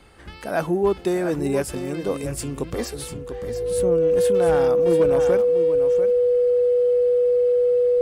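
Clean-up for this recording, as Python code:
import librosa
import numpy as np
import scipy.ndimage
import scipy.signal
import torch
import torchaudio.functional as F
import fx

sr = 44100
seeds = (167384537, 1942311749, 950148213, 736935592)

y = fx.fix_declip(x, sr, threshold_db=-11.0)
y = fx.notch(y, sr, hz=490.0, q=30.0)
y = fx.fix_echo_inverse(y, sr, delay_ms=693, level_db=-9.5)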